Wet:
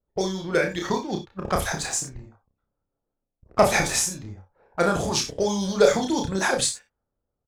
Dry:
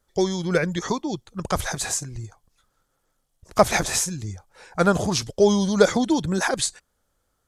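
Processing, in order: harmonic-percussive split harmonic -7 dB; level-controlled noise filter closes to 650 Hz, open at -22 dBFS; waveshaping leveller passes 1; doubling 31 ms -4 dB; gated-style reverb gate 80 ms rising, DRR 8 dB; trim -4 dB

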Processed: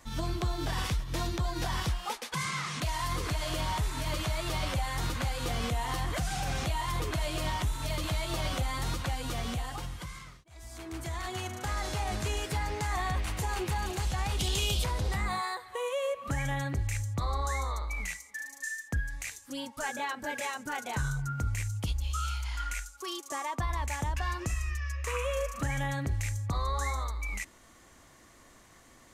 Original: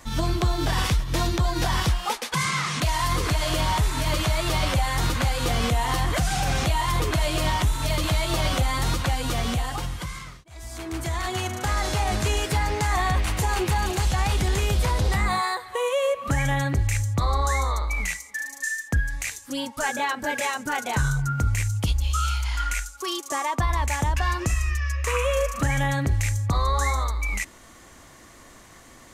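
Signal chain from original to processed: 14.39–14.84 s: resonant high shelf 2.4 kHz +7 dB, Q 3; trim -8.5 dB

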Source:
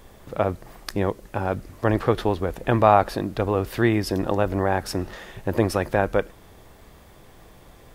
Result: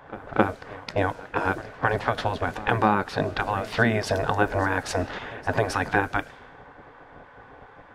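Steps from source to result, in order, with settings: compression 12:1, threshold -22 dBFS, peak gain reduction 13 dB; bass shelf 350 Hz -6.5 dB; level-controlled noise filter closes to 1.3 kHz, open at -24.5 dBFS; small resonant body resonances 210/340/630/1500 Hz, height 14 dB, ringing for 50 ms; spectral gate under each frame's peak -10 dB weak; pre-echo 265 ms -18.5 dB; trim +7.5 dB

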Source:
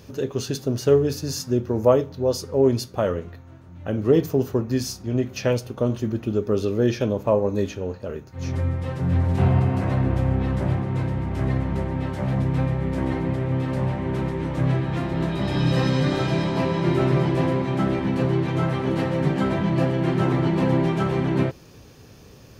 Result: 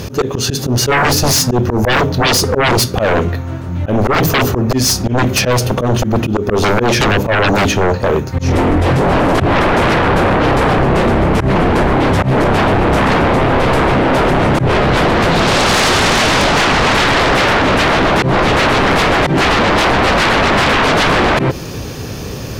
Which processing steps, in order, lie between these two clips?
slow attack 172 ms; sine folder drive 19 dB, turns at -8.5 dBFS

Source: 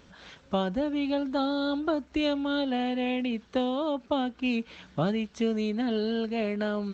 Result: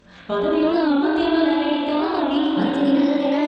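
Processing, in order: gliding tape speed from 104% -> 131%; repeats whose band climbs or falls 296 ms, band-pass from 450 Hz, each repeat 1.4 oct, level -5.5 dB; dynamic bell 750 Hz, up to -7 dB, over -47 dBFS, Q 7.3; spring tank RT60 3.7 s, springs 32/37 ms, chirp 35 ms, DRR -9 dB; tempo 1.7×; warped record 45 rpm, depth 160 cents

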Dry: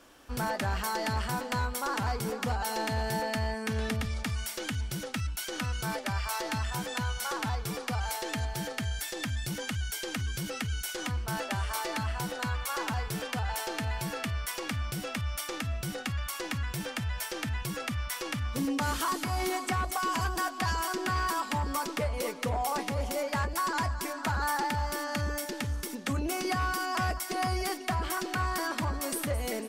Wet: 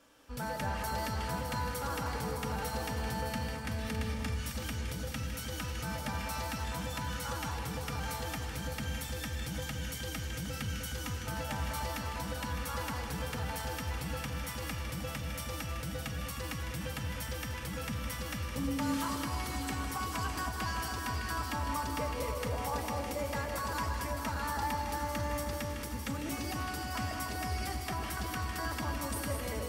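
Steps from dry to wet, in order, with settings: comb of notches 360 Hz; echo whose repeats swap between lows and highs 305 ms, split 1.2 kHz, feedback 72%, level -5.5 dB; gated-style reverb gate 240 ms rising, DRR 3.5 dB; trim -5.5 dB

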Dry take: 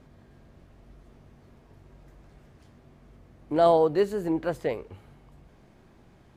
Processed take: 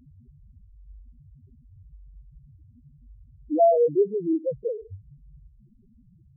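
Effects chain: in parallel at -2.5 dB: compression, threshold -37 dBFS, peak gain reduction 19.5 dB; on the sum: loudest bins only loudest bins 2; trim +3 dB

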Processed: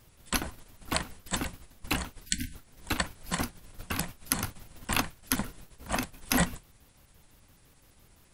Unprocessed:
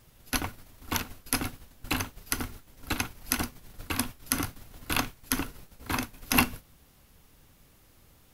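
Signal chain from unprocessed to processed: pitch shift switched off and on -6 st, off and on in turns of 85 ms; spectral selection erased 2.26–2.54 s, 320–1500 Hz

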